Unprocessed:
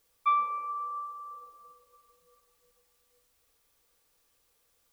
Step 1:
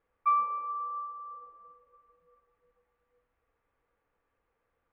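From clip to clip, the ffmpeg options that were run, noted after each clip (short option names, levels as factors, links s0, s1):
-af "lowpass=f=2000:w=0.5412,lowpass=f=2000:w=1.3066"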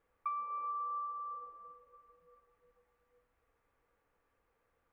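-af "acompressor=threshold=0.0141:ratio=12,volume=1.12"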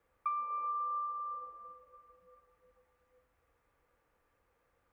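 -af "afreqshift=14,volume=1.33"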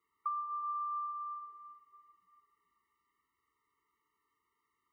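-af "highpass=f=670:p=1,afftfilt=real='re*eq(mod(floor(b*sr/1024/450),2),0)':imag='im*eq(mod(floor(b*sr/1024/450),2),0)':win_size=1024:overlap=0.75"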